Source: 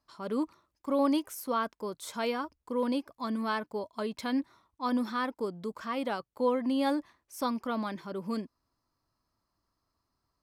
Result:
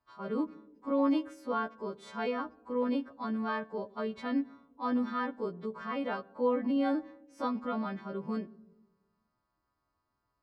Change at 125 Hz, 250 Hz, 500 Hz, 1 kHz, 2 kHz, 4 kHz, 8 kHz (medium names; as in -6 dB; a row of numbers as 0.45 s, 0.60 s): 0.0 dB, -0.5 dB, -1.5 dB, -2.5 dB, -2.0 dB, -7.5 dB, under -15 dB